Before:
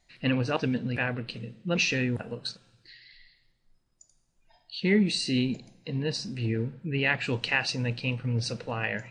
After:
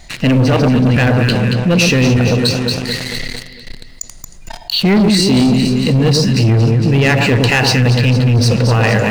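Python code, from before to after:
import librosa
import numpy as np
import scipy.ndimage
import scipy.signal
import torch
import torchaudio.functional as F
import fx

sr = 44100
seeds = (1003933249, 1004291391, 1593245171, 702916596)

p1 = fx.dynamic_eq(x, sr, hz=2100.0, q=0.76, threshold_db=-40.0, ratio=4.0, max_db=-5)
p2 = fx.rider(p1, sr, range_db=3, speed_s=0.5)
p3 = p1 + F.gain(torch.from_numpy(p2), -2.0).numpy()
p4 = fx.low_shelf(p3, sr, hz=120.0, db=6.0)
p5 = fx.echo_alternate(p4, sr, ms=114, hz=1300.0, feedback_pct=70, wet_db=-4.5)
p6 = fx.leveller(p5, sr, passes=3)
y = fx.env_flatten(p6, sr, amount_pct=50)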